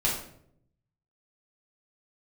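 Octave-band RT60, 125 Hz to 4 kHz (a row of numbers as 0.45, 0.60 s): 1.2, 0.95, 0.80, 0.55, 0.50, 0.45 s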